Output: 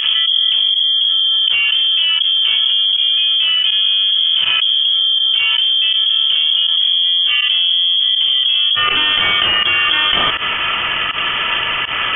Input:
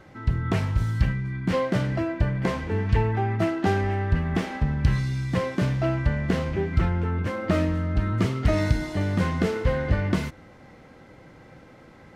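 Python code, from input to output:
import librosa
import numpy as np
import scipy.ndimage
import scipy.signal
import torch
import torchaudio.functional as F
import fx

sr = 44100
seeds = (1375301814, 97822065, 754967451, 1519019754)

y = fx.tilt_eq(x, sr, slope=fx.steps((0.0, -3.5), (8.74, 2.5)))
y = fx.cheby_harmonics(y, sr, harmonics=(5,), levels_db=(-11,), full_scale_db=3.5)
y = fx.volume_shaper(y, sr, bpm=81, per_beat=1, depth_db=-20, release_ms=84.0, shape='fast start')
y = fx.freq_invert(y, sr, carrier_hz=3300)
y = fx.env_flatten(y, sr, amount_pct=100)
y = y * 10.0 ** (-14.0 / 20.0)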